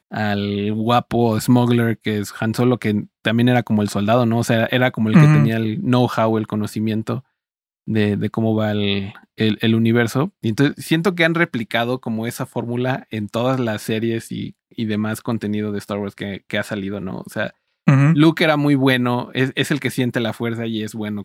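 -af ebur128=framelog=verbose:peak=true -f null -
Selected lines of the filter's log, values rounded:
Integrated loudness:
  I:         -19.0 LUFS
  Threshold: -29.2 LUFS
Loudness range:
  LRA:         6.6 LU
  Threshold: -39.1 LUFS
  LRA low:   -23.2 LUFS
  LRA high:  -16.5 LUFS
True peak:
  Peak:       -1.3 dBFS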